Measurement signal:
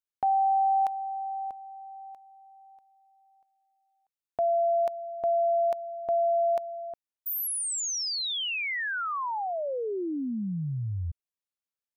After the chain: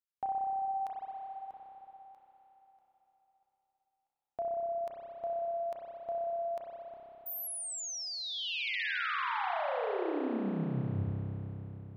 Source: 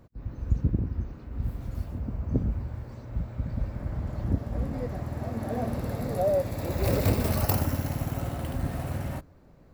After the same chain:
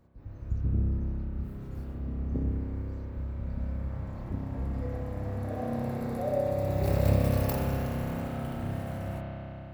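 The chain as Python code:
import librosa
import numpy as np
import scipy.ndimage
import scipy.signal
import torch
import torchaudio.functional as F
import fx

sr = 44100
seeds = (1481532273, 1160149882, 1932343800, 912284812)

y = fx.rev_spring(x, sr, rt60_s=3.9, pass_ms=(30,), chirp_ms=50, drr_db=-4.5)
y = y * librosa.db_to_amplitude(-8.5)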